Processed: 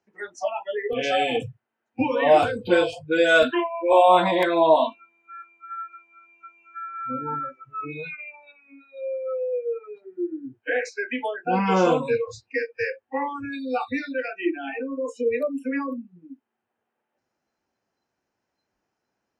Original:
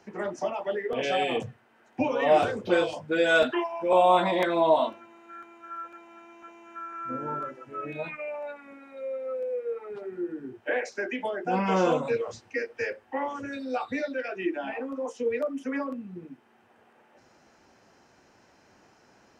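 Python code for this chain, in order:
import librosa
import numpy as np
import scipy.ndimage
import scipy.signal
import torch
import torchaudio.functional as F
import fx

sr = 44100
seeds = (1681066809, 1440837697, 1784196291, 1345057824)

y = fx.noise_reduce_blind(x, sr, reduce_db=25)
y = F.gain(torch.from_numpy(y), 4.5).numpy()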